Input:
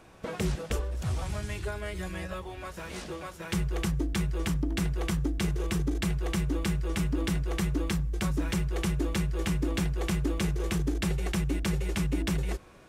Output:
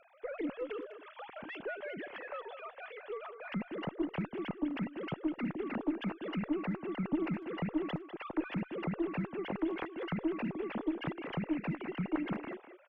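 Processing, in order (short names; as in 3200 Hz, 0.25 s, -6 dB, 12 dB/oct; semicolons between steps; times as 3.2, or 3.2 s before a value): sine-wave speech; tube stage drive 16 dB, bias 0.3; speakerphone echo 0.2 s, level -10 dB; gain -7 dB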